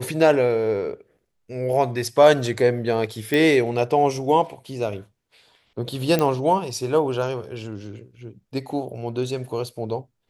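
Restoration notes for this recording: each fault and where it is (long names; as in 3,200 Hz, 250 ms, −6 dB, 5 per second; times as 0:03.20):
0:03.34: click
0:06.19: click −8 dBFS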